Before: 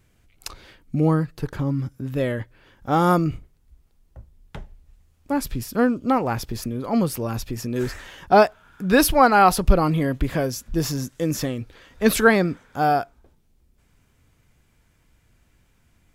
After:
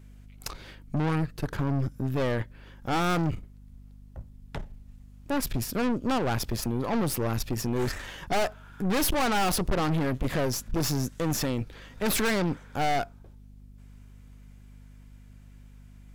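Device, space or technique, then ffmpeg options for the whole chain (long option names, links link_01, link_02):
valve amplifier with mains hum: -af "aeval=exprs='(tanh(25.1*val(0)+0.65)-tanh(0.65))/25.1':channel_layout=same,aeval=exprs='val(0)+0.00251*(sin(2*PI*50*n/s)+sin(2*PI*2*50*n/s)/2+sin(2*PI*3*50*n/s)/3+sin(2*PI*4*50*n/s)/4+sin(2*PI*5*50*n/s)/5)':channel_layout=same,volume=4dB"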